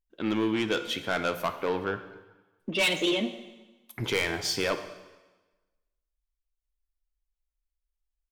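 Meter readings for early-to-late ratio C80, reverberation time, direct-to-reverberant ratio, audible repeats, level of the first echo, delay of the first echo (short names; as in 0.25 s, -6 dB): 12.5 dB, 1.2 s, 8.5 dB, none, none, none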